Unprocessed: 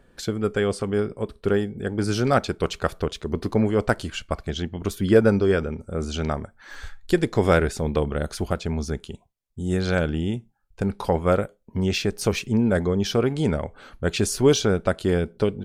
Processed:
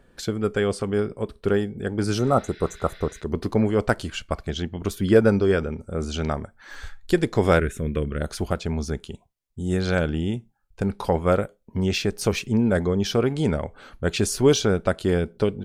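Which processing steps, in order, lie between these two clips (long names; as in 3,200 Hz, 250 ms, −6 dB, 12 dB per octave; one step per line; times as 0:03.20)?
0:02.21–0:03.17: healed spectral selection 1,400–5,800 Hz after
0:07.60–0:08.21: phaser with its sweep stopped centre 2,000 Hz, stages 4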